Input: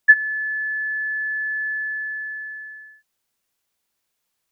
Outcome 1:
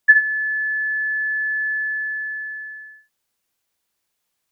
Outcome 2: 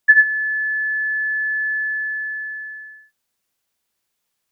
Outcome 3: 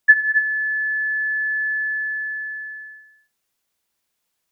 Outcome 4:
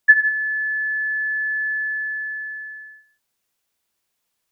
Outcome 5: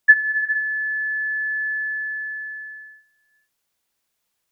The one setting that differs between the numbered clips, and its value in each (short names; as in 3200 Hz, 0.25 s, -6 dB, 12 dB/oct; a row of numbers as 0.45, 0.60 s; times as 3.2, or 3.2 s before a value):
non-linear reverb, gate: 80, 120, 310, 190, 480 ms